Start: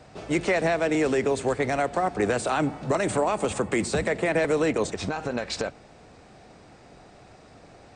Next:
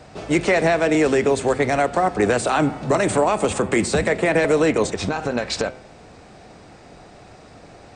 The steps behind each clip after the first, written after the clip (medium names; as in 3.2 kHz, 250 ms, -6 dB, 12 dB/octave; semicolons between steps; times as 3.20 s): de-hum 128.4 Hz, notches 29; trim +6 dB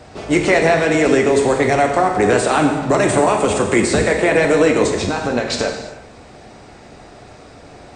gated-style reverb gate 380 ms falling, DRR 2.5 dB; trim +2.5 dB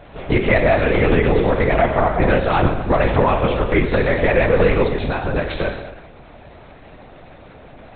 LPC vocoder at 8 kHz whisper; trim -1 dB